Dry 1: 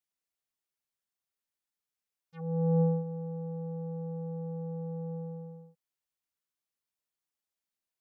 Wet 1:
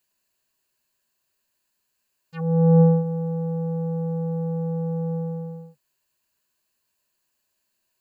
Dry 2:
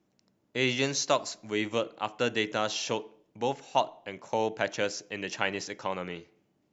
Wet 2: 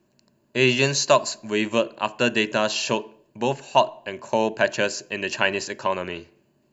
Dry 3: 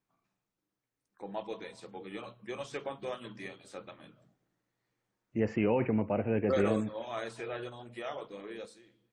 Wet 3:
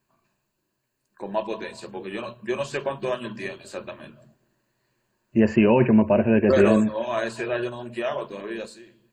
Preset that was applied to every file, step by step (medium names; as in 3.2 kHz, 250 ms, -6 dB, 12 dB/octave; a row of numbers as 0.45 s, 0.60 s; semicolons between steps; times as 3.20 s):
rippled EQ curve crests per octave 1.4, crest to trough 9 dB; normalise loudness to -23 LUFS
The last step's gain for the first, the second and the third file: +14.0 dB, +6.5 dB, +10.5 dB